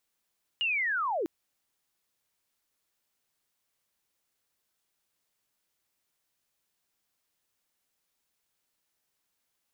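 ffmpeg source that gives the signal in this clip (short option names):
-f lavfi -i "aevalsrc='pow(10,(-25.5-2*t/0.65)/20)*sin(2*PI*(2900*t-2610*t*t/(2*0.65)))':d=0.65:s=44100"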